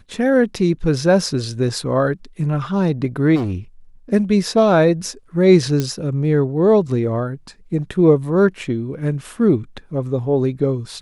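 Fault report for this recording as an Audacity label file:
3.350000	3.550000	clipped -18 dBFS
5.800000	5.800000	pop -7 dBFS

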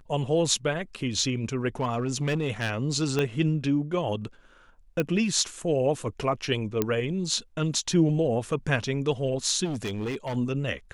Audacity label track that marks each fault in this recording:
1.800000	2.700000	clipped -21.5 dBFS
3.190000	3.190000	pop -13 dBFS
5.000000	5.000000	pop -13 dBFS
6.820000	6.820000	pop -10 dBFS
9.640000	10.370000	clipped -27 dBFS

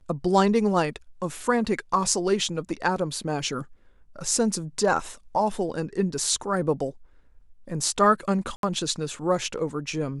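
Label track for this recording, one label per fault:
8.560000	8.630000	dropout 72 ms

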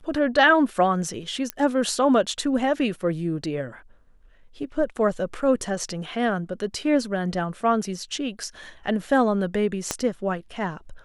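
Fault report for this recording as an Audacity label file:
1.500000	1.500000	pop -11 dBFS
9.910000	9.910000	pop -9 dBFS

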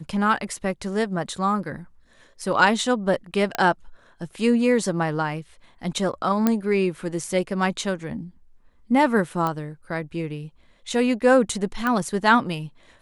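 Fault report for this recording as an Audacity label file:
3.550000	3.550000	pop -9 dBFS
6.470000	6.470000	pop -7 dBFS
9.470000	9.470000	pop -13 dBFS
11.870000	11.870000	pop -12 dBFS

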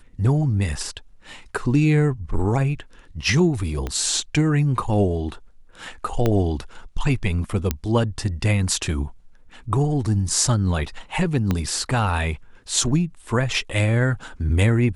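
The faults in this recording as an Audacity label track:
3.870000	3.870000	pop -14 dBFS
6.260000	6.260000	pop -8 dBFS
7.710000	7.710000	pop -6 dBFS
11.510000	11.510000	pop -9 dBFS

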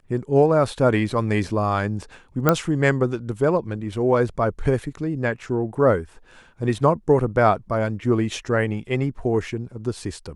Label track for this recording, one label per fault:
2.490000	2.490000	pop -3 dBFS

